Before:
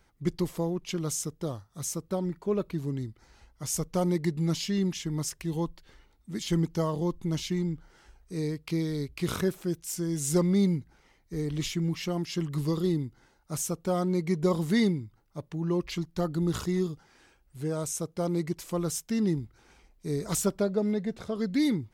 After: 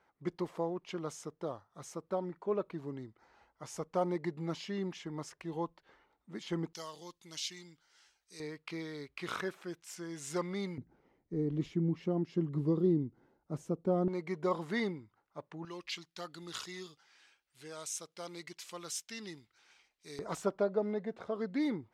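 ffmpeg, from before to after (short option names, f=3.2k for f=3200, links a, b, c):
-af "asetnsamples=n=441:p=0,asendcmd='6.73 bandpass f 4800;8.4 bandpass f 1500;10.78 bandpass f 320;14.08 bandpass f 1100;15.65 bandpass f 3300;20.19 bandpass f 840',bandpass=f=880:t=q:w=0.82:csg=0"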